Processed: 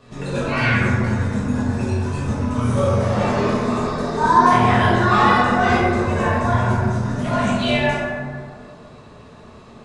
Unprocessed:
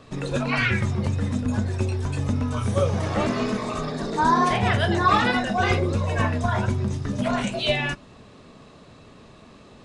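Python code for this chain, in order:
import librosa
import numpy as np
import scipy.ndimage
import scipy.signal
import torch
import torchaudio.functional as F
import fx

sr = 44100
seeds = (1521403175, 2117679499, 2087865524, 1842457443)

y = fx.rev_plate(x, sr, seeds[0], rt60_s=2.1, hf_ratio=0.35, predelay_ms=0, drr_db=-9.0)
y = F.gain(torch.from_numpy(y), -4.5).numpy()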